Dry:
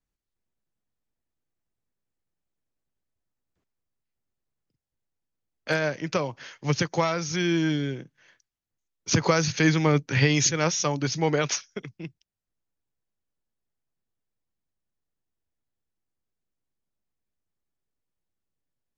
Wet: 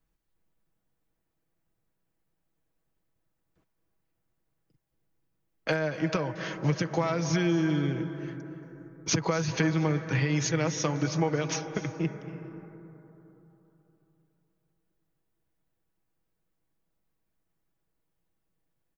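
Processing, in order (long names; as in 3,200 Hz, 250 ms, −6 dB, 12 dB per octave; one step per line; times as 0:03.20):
parametric band 6,000 Hz −7 dB 2.3 octaves
downward compressor 12 to 1, threshold −33 dBFS, peak gain reduction 17.5 dB
comb filter 6.2 ms, depth 42%
on a send: convolution reverb RT60 3.5 s, pre-delay 221 ms, DRR 9 dB
on the sum: level +7.5 dB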